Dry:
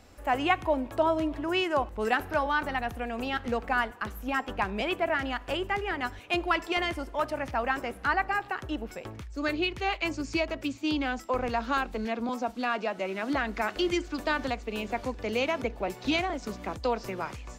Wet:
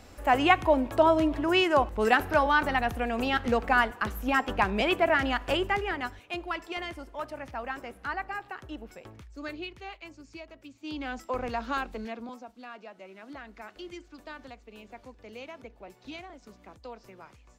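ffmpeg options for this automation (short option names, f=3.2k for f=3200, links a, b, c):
-af "volume=17dB,afade=t=out:st=5.52:d=0.76:silence=0.281838,afade=t=out:st=9.27:d=0.81:silence=0.354813,afade=t=in:st=10.74:d=0.47:silence=0.223872,afade=t=out:st=11.85:d=0.61:silence=0.251189"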